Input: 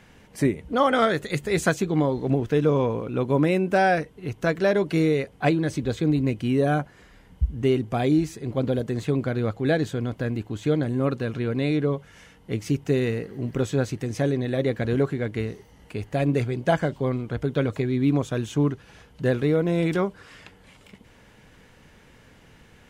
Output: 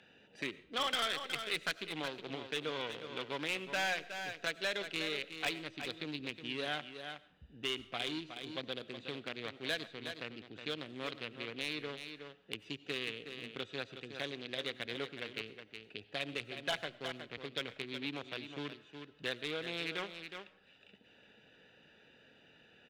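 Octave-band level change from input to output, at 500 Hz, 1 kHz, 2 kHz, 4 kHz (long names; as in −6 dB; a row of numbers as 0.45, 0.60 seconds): −19.0, −15.0, −7.0, +1.0 decibels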